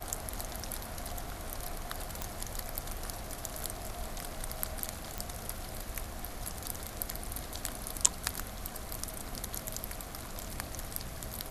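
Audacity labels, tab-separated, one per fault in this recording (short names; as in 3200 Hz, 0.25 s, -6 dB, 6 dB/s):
2.220000	2.220000	pop
5.180000	5.180000	pop -19 dBFS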